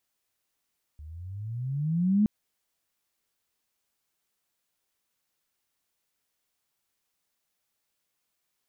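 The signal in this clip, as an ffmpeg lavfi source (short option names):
-f lavfi -i "aevalsrc='pow(10,(-18+23*(t/1.27-1))/20)*sin(2*PI*72.5*1.27/(19*log(2)/12)*(exp(19*log(2)/12*t/1.27)-1))':d=1.27:s=44100"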